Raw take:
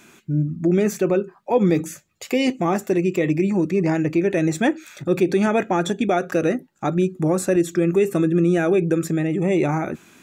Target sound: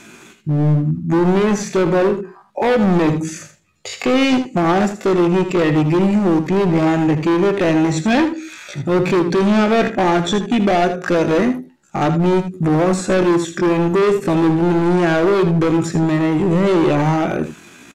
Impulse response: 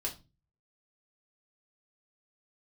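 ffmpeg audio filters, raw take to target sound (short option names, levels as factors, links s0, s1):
-filter_complex "[0:a]atempo=0.57,lowpass=11000,asoftclip=type=hard:threshold=0.0891,acrossover=split=6900[s0][s1];[s1]acompressor=threshold=0.00141:ratio=4:attack=1:release=60[s2];[s0][s2]amix=inputs=2:normalize=0,asplit=2[s3][s4];[s4]aecho=0:1:79:0.299[s5];[s3][s5]amix=inputs=2:normalize=0,volume=2.66"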